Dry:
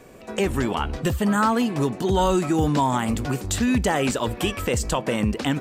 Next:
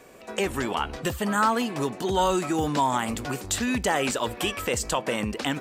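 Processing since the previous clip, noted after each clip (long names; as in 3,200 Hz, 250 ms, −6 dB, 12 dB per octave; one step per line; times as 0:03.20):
low-shelf EQ 290 Hz −10.5 dB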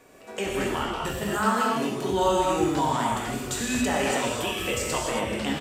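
double-tracking delay 25 ms −11 dB
reverb whose tail is shaped and stops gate 300 ms flat, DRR −3.5 dB
level −5.5 dB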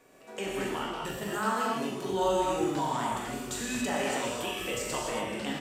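parametric band 73 Hz −13 dB 0.56 octaves
on a send: flutter between parallel walls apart 7.1 metres, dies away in 0.27 s
on the sum: level −6 dB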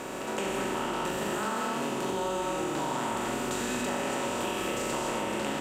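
compressor on every frequency bin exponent 0.4
downward compressor, threshold −26 dBFS, peak gain reduction 6.5 dB
level −1.5 dB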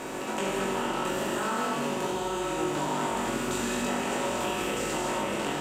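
chorus effect 0.42 Hz, delay 19 ms, depth 2.5 ms
level +4.5 dB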